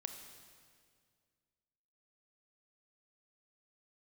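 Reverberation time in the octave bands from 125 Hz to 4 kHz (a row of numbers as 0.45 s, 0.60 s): 2.4 s, 2.3 s, 2.2 s, 1.9 s, 1.8 s, 1.8 s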